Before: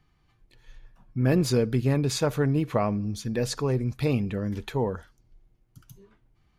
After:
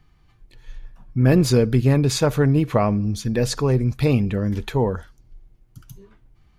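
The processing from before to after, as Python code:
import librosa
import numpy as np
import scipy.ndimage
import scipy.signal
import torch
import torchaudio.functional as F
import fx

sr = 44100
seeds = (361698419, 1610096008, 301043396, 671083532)

y = fx.low_shelf(x, sr, hz=80.0, db=7.0)
y = y * 10.0 ** (5.5 / 20.0)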